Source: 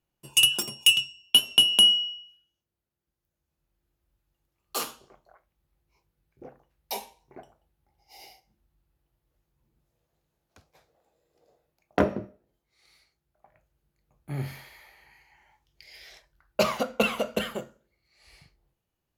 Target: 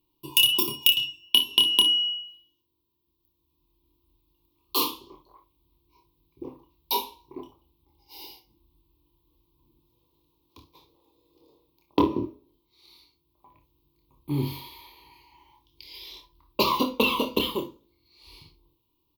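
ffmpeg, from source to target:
ffmpeg -i in.wav -af "firequalizer=gain_entry='entry(100,0);entry(200,-6);entry(300,10);entry(690,-19);entry(990,11);entry(1500,-29);entry(2400,-3);entry(3600,7);entry(7300,-13);entry(16000,13)':delay=0.05:min_phase=1,acompressor=threshold=-22dB:ratio=6,aecho=1:1:27|58|70:0.501|0.211|0.141,volume=4.5dB" out.wav

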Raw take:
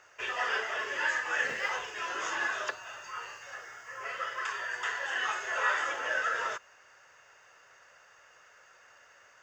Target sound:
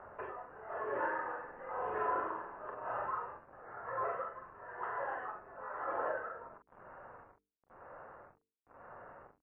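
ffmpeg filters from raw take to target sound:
ffmpeg -i in.wav -filter_complex "[0:a]acompressor=threshold=-41dB:ratio=5,tremolo=f=1:d=0.88,acrusher=bits=9:mix=0:aa=0.000001,lowpass=frequency=1100:width=0.5412,lowpass=frequency=1100:width=1.3066,bandreject=frequency=50:width_type=h:width=6,bandreject=frequency=100:width_type=h:width=6,bandreject=frequency=150:width_type=h:width=6,bandreject=frequency=200:width_type=h:width=6,bandreject=frequency=250:width_type=h:width=6,bandreject=frequency=300:width_type=h:width=6,bandreject=frequency=350:width_type=h:width=6,bandreject=frequency=400:width_type=h:width=6,bandreject=frequency=450:width_type=h:width=6,asplit=2[link_01][link_02];[link_02]adelay=44,volume=-7dB[link_03];[link_01][link_03]amix=inputs=2:normalize=0,asettb=1/sr,asplit=3[link_04][link_05][link_06];[link_04]atrim=end=0.924[link_07];[link_05]atrim=start=0.92:end=3.06,asetpts=PTS-STARTPTS,afade=type=in:duration=0.004:curve=qsin,afade=type=out:start_time=2.136:duration=0.004:curve=qsin,aecho=1:1:40|96|174.4|284.2|437.8:0.631|0.398|0.251|0.158|0.1,atrim=end_sample=94374[link_08];[link_06]atrim=start=3.056[link_09];[link_07][link_08]acrossfade=duration=0.004:curve1=hsin:curve2=qsin[link_10];[link_10][link_09]acrossfade=duration=0.004:curve1=qsin:curve2=hsin,volume=13dB" -ar 12000 -c:a libmp3lame -b:a 24k out.mp3

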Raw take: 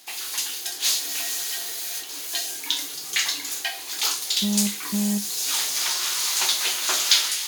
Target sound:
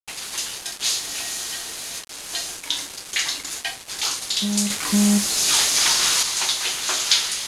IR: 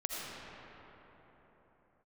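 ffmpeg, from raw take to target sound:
-filter_complex "[0:a]acrusher=bits=4:mix=0:aa=0.000001,asettb=1/sr,asplit=3[link_01][link_02][link_03];[link_01]atrim=end=4.704[link_04];[link_02]atrim=start=4.7:end=6.23,asetpts=PTS-STARTPTS,afade=type=in:duration=0.004:curve=qsin,afade=type=out:start_time=1.526:duration=0.004:curve=qsin,acontrast=77[link_05];[link_03]atrim=start=6.226[link_06];[link_04][link_05]acrossfade=duration=0.004:curve1=hsin:curve2=qsin[link_07];[link_07][link_06]acrossfade=duration=0.004:curve1=qsin:curve2=hsin,lowpass=frequency=11000:width=0.5412,lowpass=frequency=11000:width=1.3066"

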